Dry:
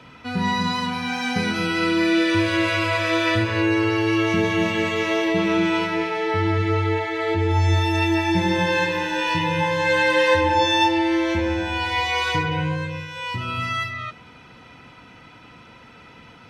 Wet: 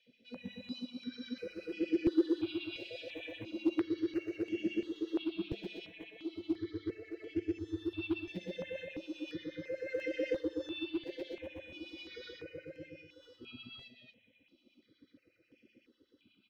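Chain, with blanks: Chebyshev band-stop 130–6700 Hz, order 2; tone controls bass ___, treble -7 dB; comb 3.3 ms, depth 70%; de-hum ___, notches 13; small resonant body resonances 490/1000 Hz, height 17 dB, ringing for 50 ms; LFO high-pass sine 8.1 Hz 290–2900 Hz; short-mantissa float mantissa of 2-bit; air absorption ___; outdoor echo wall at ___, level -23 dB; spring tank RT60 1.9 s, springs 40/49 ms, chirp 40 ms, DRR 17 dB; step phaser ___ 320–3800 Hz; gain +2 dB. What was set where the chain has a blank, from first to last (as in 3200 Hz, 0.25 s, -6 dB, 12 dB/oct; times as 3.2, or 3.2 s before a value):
-4 dB, 315.9 Hz, 340 m, 36 m, 2.9 Hz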